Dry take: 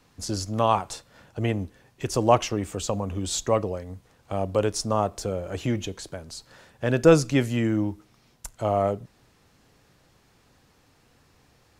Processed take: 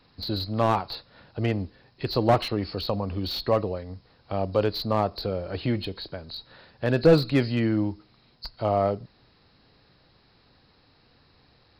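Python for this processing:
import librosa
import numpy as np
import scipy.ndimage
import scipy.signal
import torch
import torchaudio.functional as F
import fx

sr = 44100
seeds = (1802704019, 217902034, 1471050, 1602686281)

y = fx.freq_compress(x, sr, knee_hz=3700.0, ratio=4.0)
y = fx.slew_limit(y, sr, full_power_hz=140.0)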